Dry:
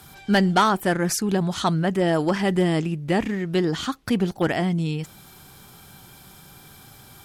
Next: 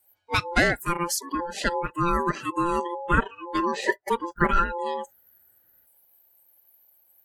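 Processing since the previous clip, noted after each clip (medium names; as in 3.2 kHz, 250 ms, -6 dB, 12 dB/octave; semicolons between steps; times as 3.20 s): spectral noise reduction 29 dB; time-frequency box 2.99–5.86 s, 550–1300 Hz +11 dB; ring modulator 690 Hz; trim +1.5 dB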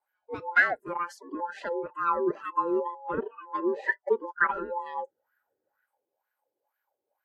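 wah-wah 2.1 Hz 370–1600 Hz, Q 5.1; trim +6 dB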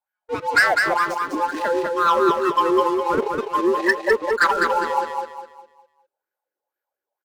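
waveshaping leveller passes 3; bass shelf 350 Hz -3 dB; feedback delay 203 ms, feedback 36%, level -4 dB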